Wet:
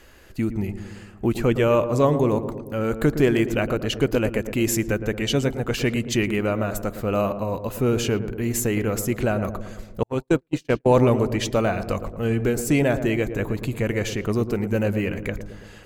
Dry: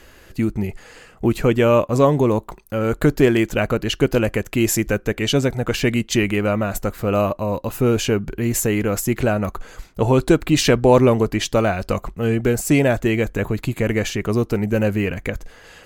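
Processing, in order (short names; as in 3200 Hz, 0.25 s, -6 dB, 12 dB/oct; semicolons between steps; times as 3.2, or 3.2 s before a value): darkening echo 0.113 s, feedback 65%, low-pass 930 Hz, level -9 dB; 10.03–10.86 gate -12 dBFS, range -51 dB; gain -4 dB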